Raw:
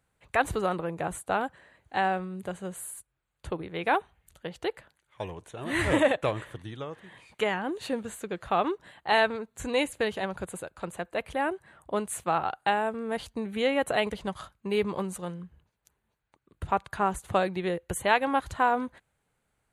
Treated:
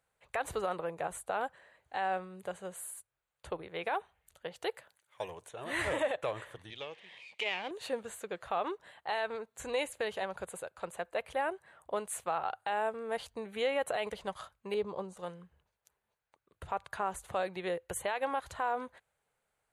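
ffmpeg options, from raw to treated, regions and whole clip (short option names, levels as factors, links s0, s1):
-filter_complex "[0:a]asettb=1/sr,asplit=3[s0][s1][s2];[s0]atrim=end=4.564[s3];[s1]atrim=start=4.56:end=5.49,asetpts=PTS-STARTPTS,afade=t=in:d=0.004:c=qsin,afade=t=out:st=0.926:d=0.004:c=qsin,highpass=80,highshelf=f=6100:g=8.5[s4];[s2]atrim=start=5.486[s5];[s3][s4]acrossfade=d=0.004:c1=hsin:c2=qsin[s6];[s6][s5]acrossfade=d=0.004:c1=qsin:c2=hsin,asettb=1/sr,asplit=3[s7][s8][s9];[s7]atrim=end=6.704[s10];[s8]atrim=start=6.7:end=7.71,asetpts=PTS-STARTPTS,afade=t=in:d=0.004:c=qsin,afade=t=out:st=1.006:d=0.004:c=qsin,aeval=exprs='if(lt(val(0),0),0.447*val(0),val(0))':c=same,highpass=140,lowpass=5500,highshelf=f=1900:t=q:w=3:g=7[s11];[s9]atrim=start=7.706[s12];[s10][s11]acrossfade=d=0.004:c1=hsin:c2=qsin[s13];[s13][s12]acrossfade=d=0.004:c1=qsin:c2=hsin,asettb=1/sr,asplit=3[s14][s15][s16];[s14]atrim=end=14.744[s17];[s15]atrim=start=14.74:end=15.17,asetpts=PTS-STARTPTS,afade=t=in:d=0.004:c=qsin,afade=t=out:st=0.426:d=0.004:c=qsin,lowpass=5600,agate=range=0.0224:threshold=0.0112:ratio=3:release=100:detection=peak,equalizer=f=2100:w=0.86:g=-12[s18];[s16]atrim=start=15.166[s19];[s17][s18]acrossfade=d=0.004:c1=hsin:c2=qsin[s20];[s20][s19]acrossfade=d=0.004:c1=qsin:c2=hsin,lowshelf=f=380:t=q:w=1.5:g=-7,bandreject=f=50:t=h:w=6,bandreject=f=100:t=h:w=6,alimiter=limit=0.119:level=0:latency=1:release=82,volume=0.631"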